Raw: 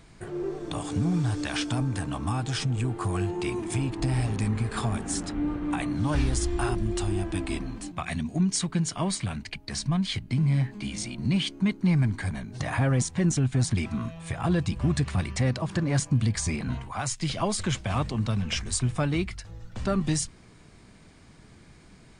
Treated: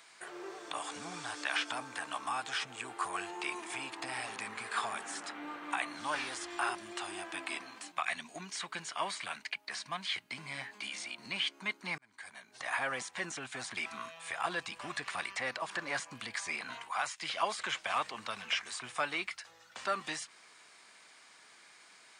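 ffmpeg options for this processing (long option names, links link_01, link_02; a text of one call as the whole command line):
ffmpeg -i in.wav -filter_complex "[0:a]asplit=2[link_01][link_02];[link_01]atrim=end=11.98,asetpts=PTS-STARTPTS,afade=type=out:start_time=11.976:duration=0.004:curve=hsin[link_03];[link_02]atrim=start=11.98,asetpts=PTS-STARTPTS,afade=type=in:duration=1.03[link_04];[link_03][link_04]concat=n=2:v=0:a=1,highpass=1000,acrossover=split=3000[link_05][link_06];[link_06]acompressor=threshold=-46dB:ratio=4:attack=1:release=60[link_07];[link_05][link_07]amix=inputs=2:normalize=0,volume=2.5dB" out.wav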